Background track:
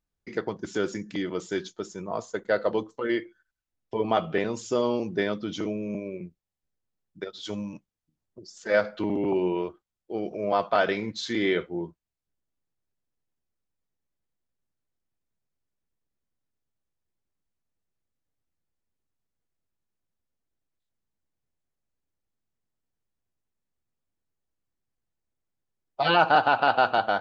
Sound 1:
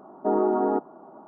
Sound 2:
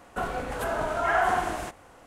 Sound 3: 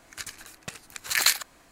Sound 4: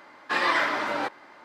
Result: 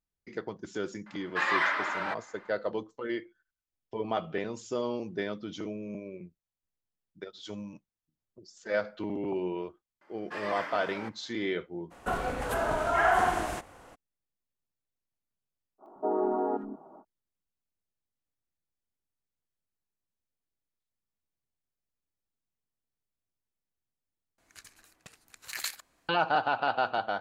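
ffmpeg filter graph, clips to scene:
-filter_complex "[4:a]asplit=2[s0][s1];[0:a]volume=0.447[s2];[s0]equalizer=f=1600:w=0.41:g=13.5[s3];[s1]equalizer=f=3900:t=o:w=0.22:g=-9[s4];[1:a]acrossover=split=250|1600[s5][s6][s7];[s7]adelay=80[s8];[s5]adelay=180[s9];[s9][s6][s8]amix=inputs=3:normalize=0[s10];[s2]asplit=2[s11][s12];[s11]atrim=end=24.384[s13];[3:a]atrim=end=1.71,asetpts=PTS-STARTPTS,volume=0.2[s14];[s12]atrim=start=26.086[s15];[s3]atrim=end=1.44,asetpts=PTS-STARTPTS,volume=0.168,afade=t=in:d=0.004:c=hsin,afade=t=out:st=1.436:d=0.004:c=hsin,adelay=1060[s16];[s4]atrim=end=1.44,asetpts=PTS-STARTPTS,volume=0.211,afade=t=in:d=0.004:c=hsin,afade=t=out:st=1.436:d=0.004:c=hsin,adelay=10010[s17];[2:a]atrim=end=2.06,asetpts=PTS-STARTPTS,volume=0.944,afade=t=in:d=0.02,afade=t=out:st=2.04:d=0.02,adelay=11900[s18];[s10]atrim=end=1.27,asetpts=PTS-STARTPTS,volume=0.596,afade=t=in:d=0.05,afade=t=out:st=1.22:d=0.05,adelay=15780[s19];[s13][s14]acrossfade=d=0.004:c1=hsin:c2=hsin[s20];[s20][s15]acrossfade=d=0.004:c1=hsin:c2=hsin[s21];[s21][s16][s17][s18][s19]amix=inputs=5:normalize=0"

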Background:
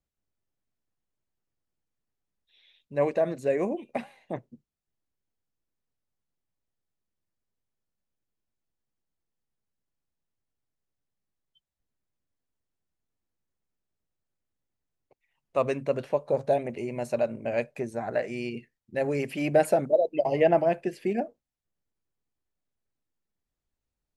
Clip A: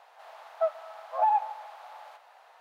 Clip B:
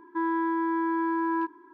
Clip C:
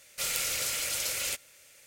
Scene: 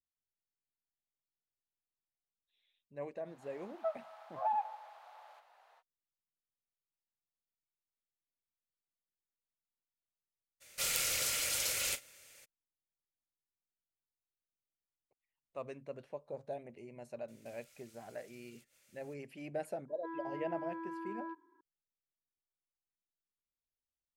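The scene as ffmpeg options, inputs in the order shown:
-filter_complex "[3:a]asplit=2[s0][s1];[0:a]volume=0.126[s2];[s0]asplit=2[s3][s4];[s4]adelay=38,volume=0.211[s5];[s3][s5]amix=inputs=2:normalize=0[s6];[s1]acompressor=threshold=0.00282:ratio=6:attack=3.2:release=140:knee=1:detection=peak[s7];[1:a]atrim=end=2.6,asetpts=PTS-STARTPTS,volume=0.335,afade=t=in:d=0.05,afade=t=out:st=2.55:d=0.05,adelay=3230[s8];[s6]atrim=end=1.86,asetpts=PTS-STARTPTS,volume=0.708,afade=t=in:d=0.02,afade=t=out:st=1.84:d=0.02,adelay=10600[s9];[s7]atrim=end=1.86,asetpts=PTS-STARTPTS,volume=0.211,afade=t=in:d=0.004:c=hsin,afade=t=out:st=1.856:d=0.004:c=hsin,adelay=17280[s10];[2:a]atrim=end=1.73,asetpts=PTS-STARTPTS,volume=0.15,afade=t=in:d=0.004:c=hsin,afade=t=out:st=1.726:d=0.004:c=hsin,adelay=876708S[s11];[s2][s8][s9][s10][s11]amix=inputs=5:normalize=0"

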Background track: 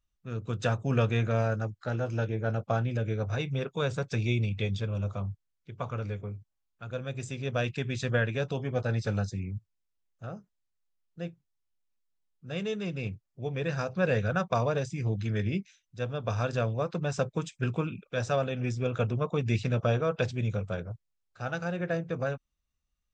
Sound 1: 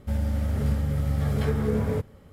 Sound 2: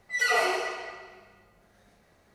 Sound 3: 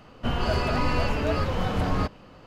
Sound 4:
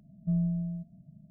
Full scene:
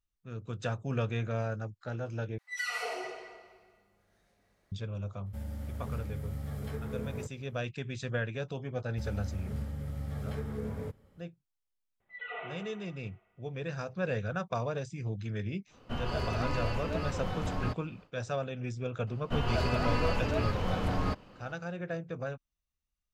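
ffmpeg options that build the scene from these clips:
-filter_complex "[2:a]asplit=2[s0][s1];[1:a]asplit=2[s2][s3];[3:a]asplit=2[s4][s5];[0:a]volume=0.501[s6];[s0]acrossover=split=210|930[s7][s8][s9];[s8]adelay=130[s10];[s7]adelay=280[s11];[s11][s10][s9]amix=inputs=3:normalize=0[s12];[s2]highshelf=f=9700:g=7.5[s13];[s1]aresample=8000,aresample=44100[s14];[s6]asplit=2[s15][s16];[s15]atrim=end=2.384[s17];[s12]atrim=end=2.34,asetpts=PTS-STARTPTS,volume=0.355[s18];[s16]atrim=start=4.716[s19];[s13]atrim=end=2.32,asetpts=PTS-STARTPTS,volume=0.224,afade=t=in:d=0.004:c=hsin,afade=t=out:st=2.316:d=0.004:c=hsin,adelay=5260[s20];[s3]atrim=end=2.32,asetpts=PTS-STARTPTS,volume=0.251,afade=t=in:d=0.004:c=hsin,afade=t=out:st=2.316:d=0.004:c=hsin,adelay=392490S[s21];[s14]atrim=end=2.34,asetpts=PTS-STARTPTS,volume=0.15,afade=t=in:d=0.004:c=hsin,afade=t=out:st=2.336:d=0.004:c=hsin,adelay=12000[s22];[s4]atrim=end=2.46,asetpts=PTS-STARTPTS,volume=0.355,afade=t=in:d=0.1,afade=t=out:st=2.36:d=0.1,adelay=15660[s23];[s5]atrim=end=2.46,asetpts=PTS-STARTPTS,volume=0.531,afade=t=in:d=0.004:c=hsin,afade=t=out:st=2.456:d=0.004:c=hsin,adelay=19070[s24];[s17][s18]acrossfade=d=0.004:c1=hsin:c2=hsin[s25];[s25][s19]acrossfade=d=0.004:c1=hsin:c2=hsin[s26];[s26][s20][s21][s22][s23][s24]amix=inputs=6:normalize=0"

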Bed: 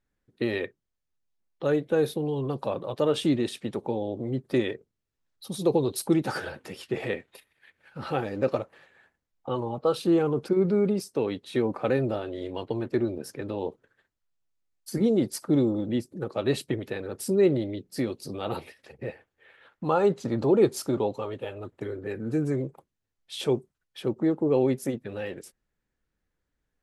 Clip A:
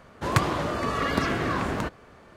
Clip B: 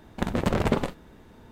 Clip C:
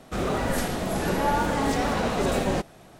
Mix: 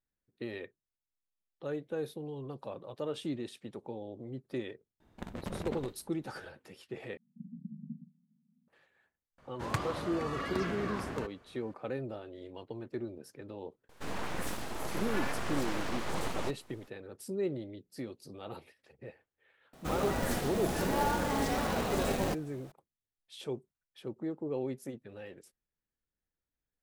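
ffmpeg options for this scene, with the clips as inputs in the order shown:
-filter_complex "[2:a]asplit=2[s0][s1];[3:a]asplit=2[s2][s3];[0:a]volume=0.237[s4];[s1]asuperpass=centerf=190:order=12:qfactor=1.8[s5];[s2]aeval=exprs='abs(val(0))':c=same[s6];[s3]acrusher=bits=3:mode=log:mix=0:aa=0.000001[s7];[s4]asplit=2[s8][s9];[s8]atrim=end=7.174[s10];[s5]atrim=end=1.51,asetpts=PTS-STARTPTS,volume=0.168[s11];[s9]atrim=start=8.676[s12];[s0]atrim=end=1.51,asetpts=PTS-STARTPTS,volume=0.168,afade=t=in:d=0.004:c=hsin,afade=t=out:st=1.506:d=0.004:c=hsin,adelay=5000[s13];[1:a]atrim=end=2.36,asetpts=PTS-STARTPTS,volume=0.282,afade=t=in:d=0.004:c=hsin,afade=t=out:st=2.356:d=0.004:c=hsin,adelay=413658S[s14];[s6]atrim=end=2.99,asetpts=PTS-STARTPTS,volume=0.376,afade=t=in:d=0.004:c=hsin,afade=t=out:st=2.986:d=0.004:c=hsin,adelay=13890[s15];[s7]atrim=end=2.99,asetpts=PTS-STARTPTS,volume=0.447,afade=t=in:d=0.004:c=hsin,afade=t=out:st=2.986:d=0.004:c=hsin,adelay=19730[s16];[s10][s11]acrossfade=d=0.004:c1=hsin:c2=hsin[s17];[s17][s12]acrossfade=d=0.004:c1=hsin:c2=hsin[s18];[s18][s13][s14][s15][s16]amix=inputs=5:normalize=0"

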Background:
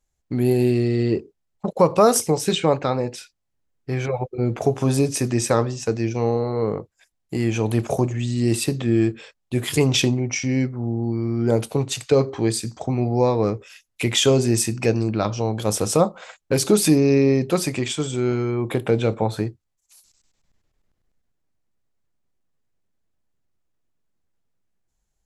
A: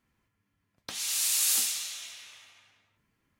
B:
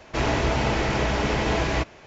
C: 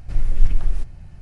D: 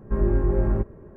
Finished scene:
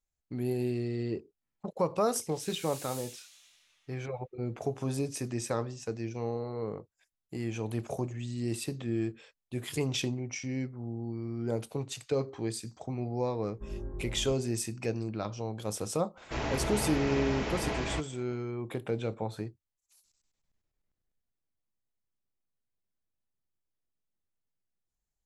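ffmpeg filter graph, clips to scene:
-filter_complex "[0:a]volume=0.224[s0];[1:a]flanger=delay=20:depth=5:speed=1.8[s1];[4:a]lowpass=1300[s2];[s1]atrim=end=3.39,asetpts=PTS-STARTPTS,volume=0.168,afade=t=in:d=0.004:c=hsin,afade=t=out:st=3.386:d=0.004:c=hsin,adelay=1410[s3];[s2]atrim=end=1.16,asetpts=PTS-STARTPTS,volume=0.126,afade=t=in:d=0.004:c=hsin,afade=t=out:st=1.156:d=0.004:c=hsin,adelay=13500[s4];[2:a]atrim=end=2.06,asetpts=PTS-STARTPTS,volume=0.316,afade=t=in:d=0.004:c=hsin,afade=t=out:st=2.056:d=0.004:c=hsin,adelay=16170[s5];[s0][s3][s4][s5]amix=inputs=4:normalize=0"

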